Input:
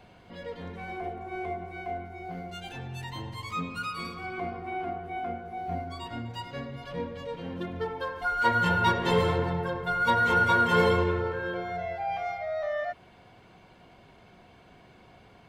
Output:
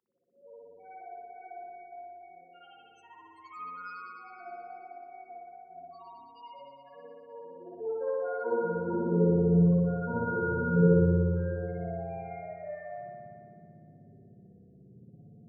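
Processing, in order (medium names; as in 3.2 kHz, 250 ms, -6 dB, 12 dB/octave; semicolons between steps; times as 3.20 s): reverb removal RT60 0.82 s; high-order bell 1.8 kHz -12.5 dB 2.9 oct; loudest bins only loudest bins 8; high-pass sweep 970 Hz -> 130 Hz, 7.16–9.85 s; spring tank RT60 2.2 s, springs 58 ms, chirp 50 ms, DRR -10 dB; trim -7 dB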